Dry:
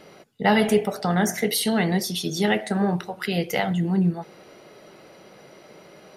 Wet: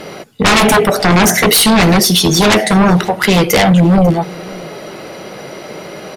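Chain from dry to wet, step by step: sine folder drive 15 dB, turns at -5.5 dBFS; delay 545 ms -22.5 dB

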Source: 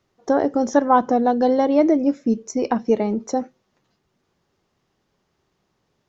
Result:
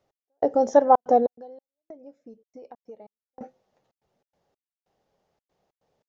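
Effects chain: high-order bell 620 Hz +10 dB 1.1 oct; trance gate "x...xxxxx.xx.x" 142 bpm -60 dB; 1.26–3.41 s: compression 3:1, threshold -44 dBFS, peak gain reduction 27 dB; trim -7.5 dB

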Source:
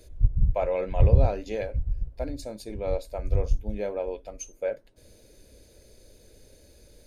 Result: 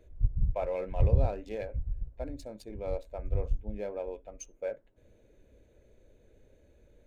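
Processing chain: local Wiener filter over 9 samples; trim -6 dB

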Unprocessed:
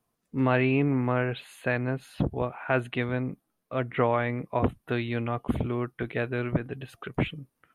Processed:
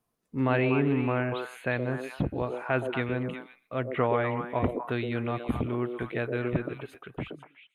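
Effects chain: fade out at the end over 1.18 s; repeats whose band climbs or falls 121 ms, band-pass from 410 Hz, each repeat 1.4 oct, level -1.5 dB; trim -2 dB

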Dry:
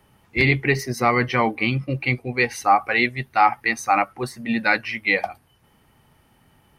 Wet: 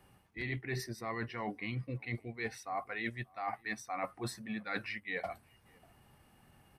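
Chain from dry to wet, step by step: reverse; compression 20:1, threshold -29 dBFS, peak gain reduction 19 dB; reverse; echo from a far wall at 100 m, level -27 dB; pitch shift -1 st; trim -5.5 dB

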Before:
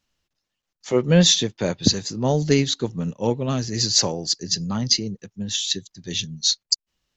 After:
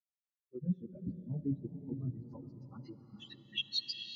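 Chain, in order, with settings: expander on every frequency bin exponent 3; reverse; compression 12:1, threshold -33 dBFS, peak gain reduction 21 dB; reverse; low-pass sweep 220 Hz -> 3.5 kHz, 3.71–6.31 s; plain phase-vocoder stretch 0.58×; on a send: echo that smears into a reverb 535 ms, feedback 46%, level -12.5 dB; on the sum: gated-style reverb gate 460 ms rising, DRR 9.5 dB; trim +2.5 dB

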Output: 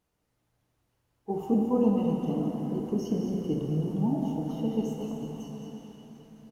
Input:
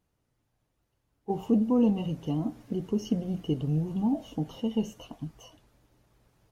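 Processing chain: bass shelf 220 Hz -5.5 dB; delay 216 ms -8.5 dB; plate-style reverb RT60 4 s, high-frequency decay 0.75×, DRR 0.5 dB; dynamic bell 3.2 kHz, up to -8 dB, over -56 dBFS, Q 0.82

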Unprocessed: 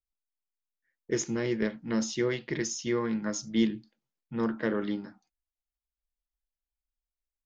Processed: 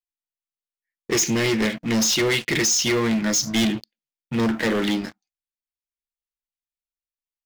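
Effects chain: resonant high shelf 1.7 kHz +9 dB, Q 1.5; waveshaping leveller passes 5; trim -6 dB

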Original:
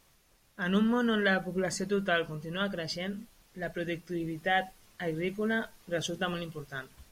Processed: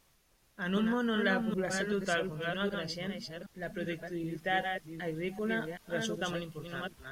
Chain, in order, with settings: chunks repeated in reverse 385 ms, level -4.5 dB; trim -3.5 dB

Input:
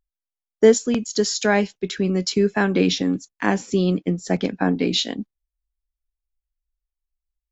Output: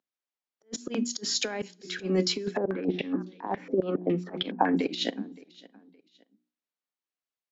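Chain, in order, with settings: high-pass 220 Hz 24 dB/octave; hum notches 60/120/180/240/300/360 Hz; compressor with a negative ratio -24 dBFS, ratio -0.5; slow attack 187 ms; distance through air 97 m; feedback delay 568 ms, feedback 31%, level -22 dB; two-slope reverb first 0.31 s, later 2 s, from -27 dB, DRR 19 dB; 2.57–4.77 s: step-sequenced low-pass 7.2 Hz 530–3500 Hz

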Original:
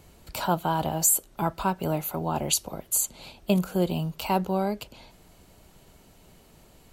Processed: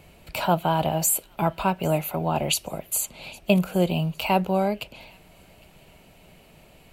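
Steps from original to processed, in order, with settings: fifteen-band graphic EQ 160 Hz +4 dB, 630 Hz +6 dB, 2.5 kHz +10 dB, 6.3 kHz -4 dB; feedback echo behind a high-pass 809 ms, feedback 31%, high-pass 2.2 kHz, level -22.5 dB

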